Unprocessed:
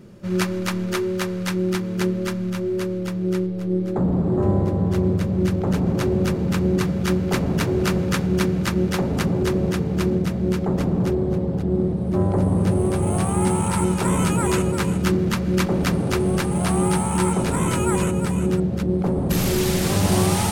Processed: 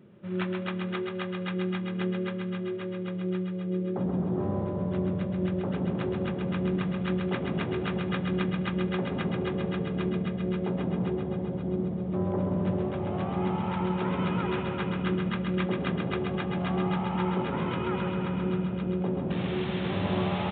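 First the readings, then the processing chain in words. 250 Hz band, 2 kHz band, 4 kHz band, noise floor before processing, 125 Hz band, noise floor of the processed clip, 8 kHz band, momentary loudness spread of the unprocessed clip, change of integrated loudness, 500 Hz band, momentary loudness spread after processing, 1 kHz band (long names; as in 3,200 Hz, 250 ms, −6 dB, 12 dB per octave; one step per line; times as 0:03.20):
−8.0 dB, −6.5 dB, −9.0 dB, −26 dBFS, −9.5 dB, −33 dBFS, below −40 dB, 4 LU, −8.5 dB, −8.0 dB, 3 LU, −7.0 dB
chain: high-pass filter 110 Hz 12 dB per octave
feedback echo with a high-pass in the loop 132 ms, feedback 76%, high-pass 300 Hz, level −5 dB
downsampling to 8,000 Hz
level −9 dB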